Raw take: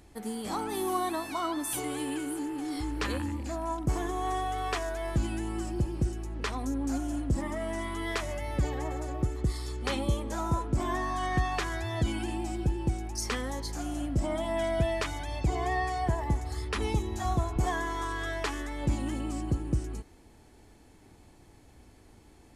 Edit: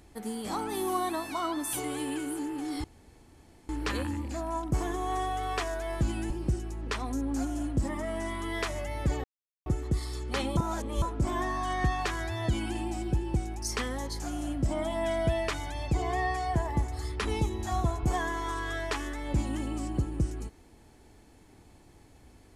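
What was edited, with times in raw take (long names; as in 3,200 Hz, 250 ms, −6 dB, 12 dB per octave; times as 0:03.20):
0:02.84: splice in room tone 0.85 s
0:05.45–0:05.83: remove
0:08.77–0:09.19: silence
0:10.10–0:10.55: reverse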